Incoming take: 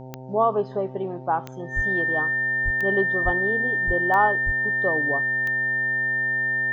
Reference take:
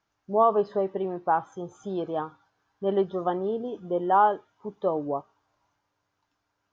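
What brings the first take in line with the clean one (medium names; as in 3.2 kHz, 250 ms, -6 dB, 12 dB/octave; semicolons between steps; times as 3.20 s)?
de-click; de-hum 129.6 Hz, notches 7; band-stop 1.8 kHz, Q 30; de-plosive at 1.75/2.64/3.24/3.86/4.45 s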